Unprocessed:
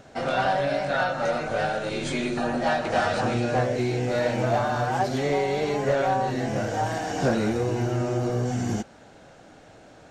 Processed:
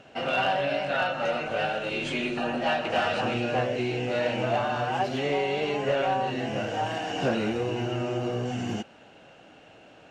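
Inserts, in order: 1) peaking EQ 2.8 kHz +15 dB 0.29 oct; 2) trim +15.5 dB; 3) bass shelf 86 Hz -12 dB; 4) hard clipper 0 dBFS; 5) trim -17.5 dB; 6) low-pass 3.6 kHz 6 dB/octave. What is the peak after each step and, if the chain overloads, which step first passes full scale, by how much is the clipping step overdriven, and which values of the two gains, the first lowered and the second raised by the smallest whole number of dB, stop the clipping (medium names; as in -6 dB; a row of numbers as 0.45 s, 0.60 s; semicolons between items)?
-11.5 dBFS, +4.0 dBFS, +4.5 dBFS, 0.0 dBFS, -17.5 dBFS, -17.5 dBFS; step 2, 4.5 dB; step 2 +10.5 dB, step 5 -12.5 dB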